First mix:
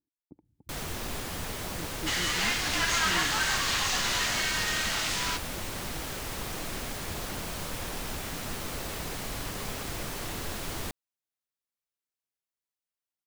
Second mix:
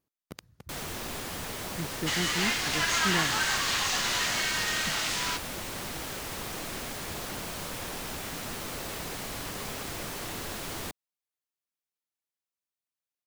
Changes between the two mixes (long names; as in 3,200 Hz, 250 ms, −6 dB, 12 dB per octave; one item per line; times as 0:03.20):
speech: remove formant resonators in series u
master: add low-shelf EQ 84 Hz −8.5 dB